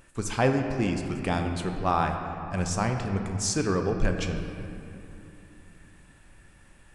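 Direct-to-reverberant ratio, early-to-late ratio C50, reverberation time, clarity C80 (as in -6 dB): 4.0 dB, 5.5 dB, 2.9 s, 6.0 dB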